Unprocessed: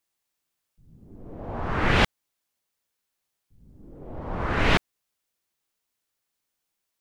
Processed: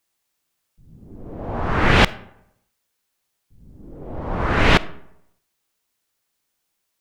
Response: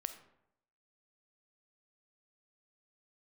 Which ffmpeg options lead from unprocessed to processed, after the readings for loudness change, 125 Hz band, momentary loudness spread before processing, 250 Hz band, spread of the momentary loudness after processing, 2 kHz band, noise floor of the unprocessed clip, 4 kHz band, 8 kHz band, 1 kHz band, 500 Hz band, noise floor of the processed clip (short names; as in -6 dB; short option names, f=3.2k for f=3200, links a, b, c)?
+6.0 dB, +6.0 dB, 19 LU, +6.0 dB, 19 LU, +6.0 dB, -82 dBFS, +6.0 dB, +6.0 dB, +6.0 dB, +6.0 dB, -75 dBFS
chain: -filter_complex "[0:a]asplit=2[a][b];[1:a]atrim=start_sample=2205[c];[b][c]afir=irnorm=-1:irlink=0,volume=-4dB[d];[a][d]amix=inputs=2:normalize=0,volume=2.5dB"